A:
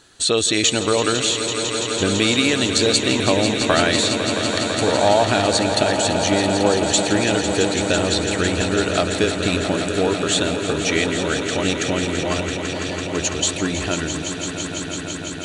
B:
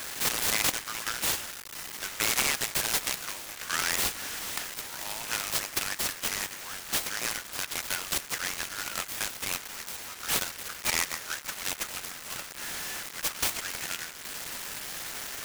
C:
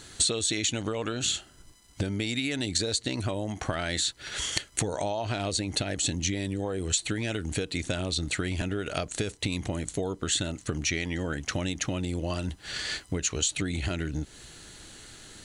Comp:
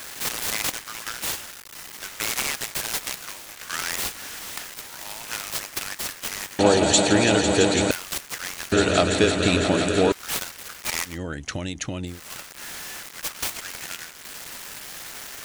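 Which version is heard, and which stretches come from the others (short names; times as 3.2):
B
6.59–7.91 from A
8.72–10.12 from A
11.11–12.13 from C, crossfade 0.16 s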